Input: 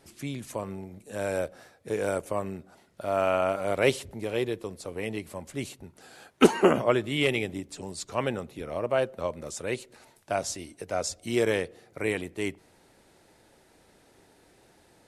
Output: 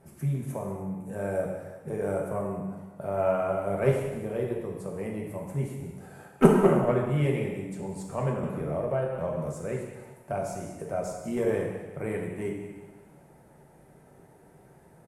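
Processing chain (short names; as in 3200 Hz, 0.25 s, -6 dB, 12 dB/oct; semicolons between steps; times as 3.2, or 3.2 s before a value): on a send: feedback echo 0.186 s, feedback 41%, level -16 dB; on the sum: added harmonics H 3 -15 dB, 4 -26 dB, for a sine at -4 dBFS; in parallel at +2.5 dB: compressor, threshold -46 dBFS, peak gain reduction 30 dB; on the sum: EQ curve 110 Hz 0 dB, 150 Hz +9 dB, 280 Hz -4 dB, 640 Hz 0 dB, 1100 Hz -4 dB, 1800 Hz -7 dB, 4100 Hz -21 dB, 11000 Hz -5 dB; non-linear reverb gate 0.36 s falling, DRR -1 dB; 8.43–9.53 three-band squash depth 70%; gain +1.5 dB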